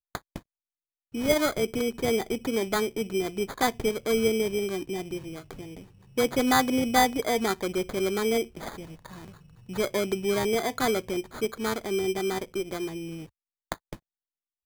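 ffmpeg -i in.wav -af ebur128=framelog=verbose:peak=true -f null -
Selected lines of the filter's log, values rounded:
Integrated loudness:
  I:         -27.4 LUFS
  Threshold: -38.4 LUFS
Loudness range:
  LRA:         4.0 LU
  Threshold: -48.1 LUFS
  LRA low:   -30.0 LUFS
  LRA high:  -26.0 LUFS
True peak:
  Peak:       -9.1 dBFS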